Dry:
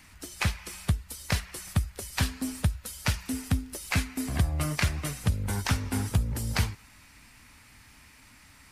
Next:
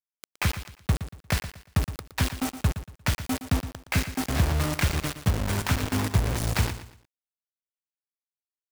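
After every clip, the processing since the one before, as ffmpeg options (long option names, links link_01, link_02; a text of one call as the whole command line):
ffmpeg -i in.wav -filter_complex "[0:a]aemphasis=mode=reproduction:type=50fm,acrusher=bits=4:mix=0:aa=0.000001,asplit=2[link_01][link_02];[link_02]aecho=0:1:117|234|351:0.251|0.0754|0.0226[link_03];[link_01][link_03]amix=inputs=2:normalize=0,volume=1.5dB" out.wav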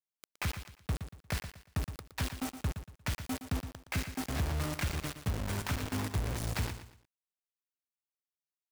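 ffmpeg -i in.wav -af "asoftclip=type=tanh:threshold=-18dB,volume=-7dB" out.wav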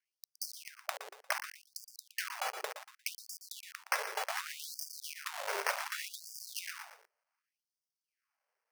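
ffmpeg -i in.wav -af "acrusher=samples=12:mix=1:aa=0.000001,acompressor=threshold=-36dB:ratio=6,afftfilt=real='re*gte(b*sr/1024,380*pow(4700/380,0.5+0.5*sin(2*PI*0.67*pts/sr)))':imag='im*gte(b*sr/1024,380*pow(4700/380,0.5+0.5*sin(2*PI*0.67*pts/sr)))':win_size=1024:overlap=0.75,volume=9.5dB" out.wav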